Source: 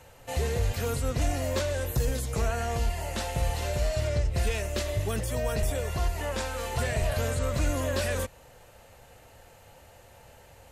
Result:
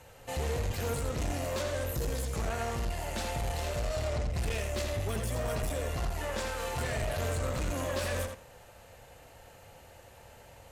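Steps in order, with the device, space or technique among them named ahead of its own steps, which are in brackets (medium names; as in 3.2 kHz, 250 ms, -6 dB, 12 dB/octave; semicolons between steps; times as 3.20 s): rockabilly slapback (valve stage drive 29 dB, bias 0.4; tape echo 84 ms, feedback 22%, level -4 dB, low-pass 5.6 kHz)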